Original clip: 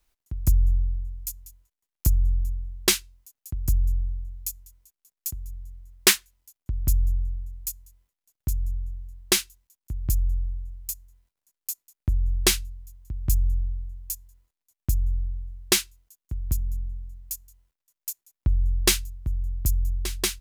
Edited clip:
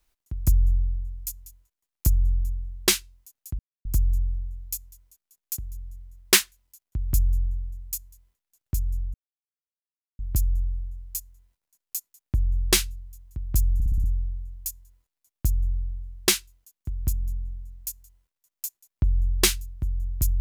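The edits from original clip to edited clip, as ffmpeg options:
-filter_complex "[0:a]asplit=9[s0][s1][s2][s3][s4][s5][s6][s7][s8];[s0]atrim=end=3.59,asetpts=PTS-STARTPTS,afade=t=out:st=3.586:d=0.004:c=hsin,apad=pad_dur=0.26[s9];[s1]atrim=start=3.59:end=8.88,asetpts=PTS-STARTPTS,afade=t=in:d=0.004:c=hsin,afade=t=out:st=5.286:d=0.004:c=hsin[s10];[s2]atrim=start=8.88:end=9.93,asetpts=PTS-STARTPTS,volume=0[s11];[s3]atrim=start=9.93:end=13.542,asetpts=PTS-STARTPTS,afade=t=in:d=0.004:c=hsin[s12];[s4]atrim=start=13.478:end=13.542[s13];[s5]atrim=start=13.478:end=13.542[s14];[s6]atrim=start=13.478:end=13.542[s15];[s7]atrim=start=13.478:end=13.542[s16];[s8]atrim=start=13.478[s17];[s9][s10][s11][s12]concat=n=4:v=0:a=1[s18];[s18][s13]acrossfade=d=0.004:c1=hsin:c2=hsin[s19];[s19][s14]acrossfade=d=0.004:c1=hsin:c2=hsin[s20];[s20][s15]acrossfade=d=0.004:c1=hsin:c2=hsin[s21];[s21][s16]acrossfade=d=0.004:c1=hsin:c2=hsin[s22];[s22][s17]acrossfade=d=0.004:c1=hsin:c2=hsin"

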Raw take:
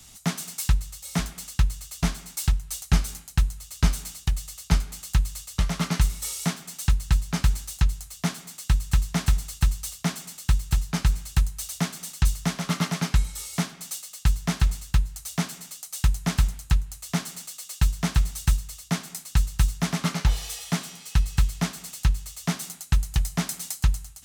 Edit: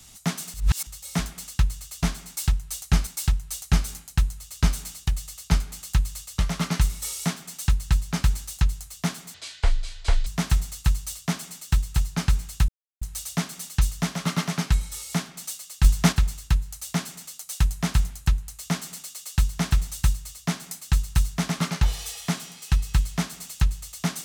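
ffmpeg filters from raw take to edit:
-filter_complex "[0:a]asplit=9[s0][s1][s2][s3][s4][s5][s6][s7][s8];[s0]atrim=end=0.542[s9];[s1]atrim=start=0.538:end=0.872,asetpts=PTS-STARTPTS,areverse[s10];[s2]atrim=start=0.868:end=3.072[s11];[s3]atrim=start=2.268:end=8.544[s12];[s4]atrim=start=8.54:end=9.03,asetpts=PTS-STARTPTS,asetrate=23373,aresample=44100[s13];[s5]atrim=start=9.026:end=11.45,asetpts=PTS-STARTPTS,afade=t=out:st=2.42:d=0.004:c=hsin,apad=pad_dur=0.33[s14];[s6]atrim=start=11.45:end=14.282,asetpts=PTS-STARTPTS,afade=t=in:d=0.004:c=hsin[s15];[s7]atrim=start=14.278:end=14.562,asetpts=PTS-STARTPTS,volume=2.24[s16];[s8]atrim=start=14.558[s17];[s9][s10]acrossfade=d=0.004:c1=hsin:c2=hsin[s18];[s18][s11]acrossfade=d=0.004:c1=hsin:c2=hsin[s19];[s19][s12]acrossfade=d=0.004:c1=hsin:c2=hsin[s20];[s20][s13]acrossfade=d=0.004:c1=hsin:c2=hsin[s21];[s14][s15]concat=n=2:v=0:a=1[s22];[s21][s22]acrossfade=d=0.004:c1=hsin:c2=hsin[s23];[s23][s16]acrossfade=d=0.004:c1=hsin:c2=hsin[s24];[s24][s17]acrossfade=d=0.004:c1=hsin:c2=hsin"

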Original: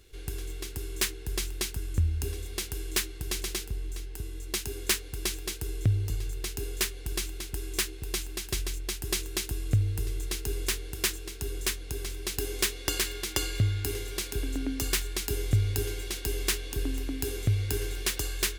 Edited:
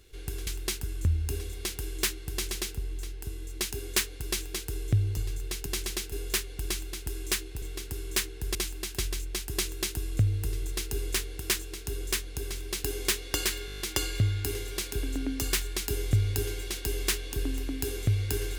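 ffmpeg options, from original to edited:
-filter_complex "[0:a]asplit=13[s0][s1][s2][s3][s4][s5][s6][s7][s8][s9][s10][s11][s12];[s0]atrim=end=0.472[s13];[s1]atrim=start=1.398:end=6.592[s14];[s2]atrim=start=3.238:end=3.702[s15];[s3]atrim=start=6.588:end=8.092[s16];[s4]atrim=start=0.468:end=1.402[s17];[s5]atrim=start=8.088:end=13.222[s18];[s6]atrim=start=13.198:end=13.222[s19];[s7]atrim=start=13.198:end=13.222[s20];[s8]atrim=start=13.198:end=13.222[s21];[s9]atrim=start=13.198:end=13.222[s22];[s10]atrim=start=13.198:end=13.222[s23];[s11]atrim=start=13.198:end=13.222[s24];[s12]atrim=start=13.198[s25];[s13][s14]acrossfade=d=0.004:c1=hsin:c2=hsin[s26];[s26][s15]acrossfade=d=0.004:c1=hsin:c2=hsin[s27];[s27][s16]acrossfade=d=0.004:c1=hsin:c2=hsin[s28];[s28][s17]acrossfade=d=0.004:c1=hsin:c2=hsin[s29];[s29][s18]acrossfade=d=0.004:c1=hsin:c2=hsin[s30];[s30][s19]acrossfade=d=0.004:c1=hsin:c2=hsin[s31];[s31][s20]acrossfade=d=0.004:c1=hsin:c2=hsin[s32];[s32][s21]acrossfade=d=0.004:c1=hsin:c2=hsin[s33];[s33][s22]acrossfade=d=0.004:c1=hsin:c2=hsin[s34];[s34][s23]acrossfade=d=0.004:c1=hsin:c2=hsin[s35];[s35][s24]acrossfade=d=0.004:c1=hsin:c2=hsin[s36];[s36][s25]acrossfade=d=0.004:c1=hsin:c2=hsin"

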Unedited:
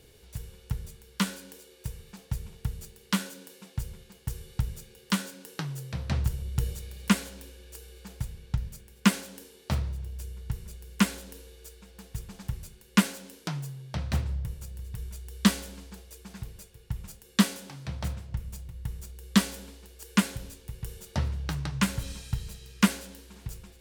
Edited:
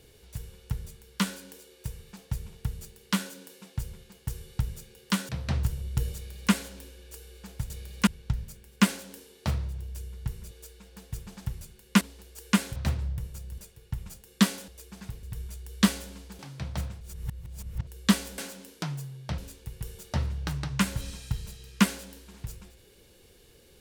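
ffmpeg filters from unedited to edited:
-filter_complex "[0:a]asplit=15[s0][s1][s2][s3][s4][s5][s6][s7][s8][s9][s10][s11][s12][s13][s14];[s0]atrim=end=5.292[s15];[s1]atrim=start=5.898:end=8.312[s16];[s2]atrim=start=6.758:end=7.132[s17];[s3]atrim=start=8.308:end=10.752[s18];[s4]atrim=start=11.528:end=13.032[s19];[s5]atrim=start=19.648:end=20.402[s20];[s6]atrim=start=14.028:end=14.852[s21];[s7]atrim=start=16.558:end=17.662[s22];[s8]atrim=start=16.008:end=16.562[s23];[s9]atrim=start=14.848:end=16.012[s24];[s10]atrim=start=17.658:end=18.282[s25];[s11]atrim=start=18.278:end=19.142,asetpts=PTS-STARTPTS,areverse[s26];[s12]atrim=start=19.138:end=19.652[s27];[s13]atrim=start=13.028:end=14.032[s28];[s14]atrim=start=20.398[s29];[s15][s16]acrossfade=d=0.004:c1=hsin:c2=hsin[s30];[s30][s17]acrossfade=d=0.004:c1=hsin:c2=hsin[s31];[s31][s18]acrossfade=d=0.004:c1=hsin:c2=hsin[s32];[s32][s19]acrossfade=d=0.004:c1=hsin:c2=hsin[s33];[s33][s20]acrossfade=d=0.004:c1=hsin:c2=hsin[s34];[s34][s21]acrossfade=d=0.004:c1=hsin:c2=hsin[s35];[s35][s22]acrossfade=d=0.004:c1=hsin:c2=hsin[s36];[s36][s23]acrossfade=d=0.004:c1=hsin:c2=hsin[s37];[s37][s24]acrossfade=d=0.004:c1=hsin:c2=hsin[s38];[s38][s25]acrossfade=d=0.004:c1=hsin:c2=hsin[s39];[s39][s26]acrossfade=d=0.004:c1=hsin:c2=hsin[s40];[s40][s27]acrossfade=d=0.004:c1=hsin:c2=hsin[s41];[s41][s28]acrossfade=d=0.004:c1=hsin:c2=hsin[s42];[s42][s29]acrossfade=d=0.004:c1=hsin:c2=hsin"

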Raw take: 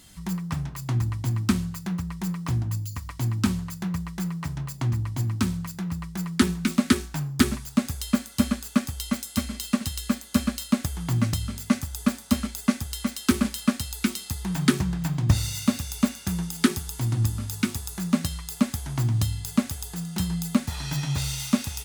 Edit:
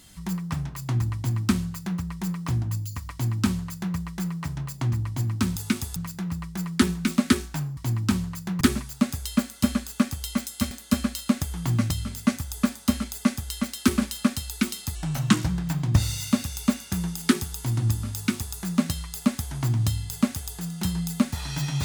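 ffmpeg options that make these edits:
-filter_complex "[0:a]asplit=8[s0][s1][s2][s3][s4][s5][s6][s7];[s0]atrim=end=5.562[s8];[s1]atrim=start=17.488:end=17.892[s9];[s2]atrim=start=5.558:end=7.372[s10];[s3]atrim=start=3.118:end=3.962[s11];[s4]atrim=start=7.368:end=9.472[s12];[s5]atrim=start=10.138:end=14.384[s13];[s6]atrim=start=14.38:end=14.84,asetpts=PTS-STARTPTS,asetrate=37485,aresample=44100[s14];[s7]atrim=start=14.836[s15];[s8][s9]acrossfade=d=0.004:c1=hsin:c2=hsin[s16];[s16][s10]acrossfade=d=0.004:c1=hsin:c2=hsin[s17];[s17][s11]acrossfade=d=0.004:c1=hsin:c2=hsin[s18];[s18][s12]acrossfade=d=0.004:c1=hsin:c2=hsin[s19];[s19][s13]acrossfade=d=0.004:c1=hsin:c2=hsin[s20];[s20][s14]acrossfade=d=0.004:c1=hsin:c2=hsin[s21];[s21][s15]acrossfade=d=0.004:c1=hsin:c2=hsin"

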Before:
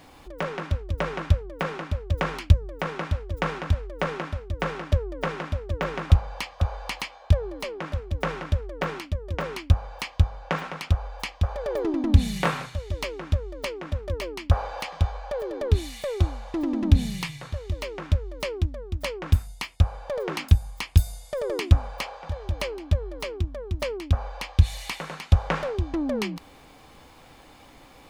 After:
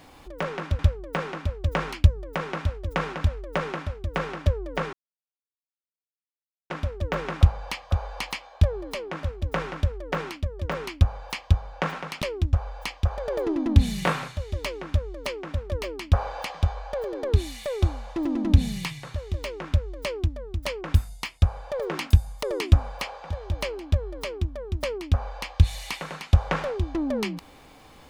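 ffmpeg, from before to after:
-filter_complex "[0:a]asplit=6[s0][s1][s2][s3][s4][s5];[s0]atrim=end=0.792[s6];[s1]atrim=start=1.248:end=5.39,asetpts=PTS-STARTPTS,afade=t=out:st=4.138:d=0.004:c=hsin,apad=pad_dur=1.77[s7];[s2]atrim=start=5.39:end=10.912,asetpts=PTS-STARTPTS,afade=t=in:d=0.004:c=hsin[s8];[s3]atrim=start=18.418:end=18.732[s9];[s4]atrim=start=10.908:end=20.812[s10];[s5]atrim=start=21.418[s11];[s7][s8]concat=n=2:v=0:a=1[s12];[s6][s12]acrossfade=d=0.004:c1=hsin:c2=hsin[s13];[s13][s9]acrossfade=d=0.004:c1=hsin:c2=hsin[s14];[s14][s10]acrossfade=d=0.004:c1=hsin:c2=hsin[s15];[s15][s11]acrossfade=d=0.004:c1=hsin:c2=hsin"

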